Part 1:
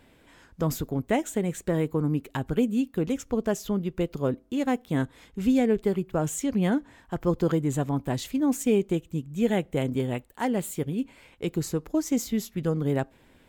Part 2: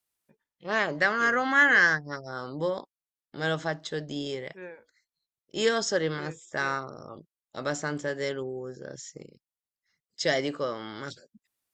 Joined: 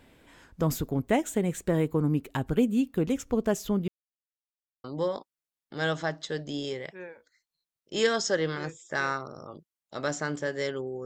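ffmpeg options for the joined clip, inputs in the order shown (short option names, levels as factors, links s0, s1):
-filter_complex "[0:a]apad=whole_dur=11.05,atrim=end=11.05,asplit=2[s0][s1];[s0]atrim=end=3.88,asetpts=PTS-STARTPTS,afade=t=out:st=3.876:d=0.004:c=hsin[s2];[s1]atrim=start=3.88:end=4.84,asetpts=PTS-STARTPTS,volume=0[s3];[1:a]atrim=start=2.46:end=8.67,asetpts=PTS-STARTPTS,afade=t=in:d=0.004:c=hsin[s4];[s2][s3][s4]concat=n=3:v=0:a=1"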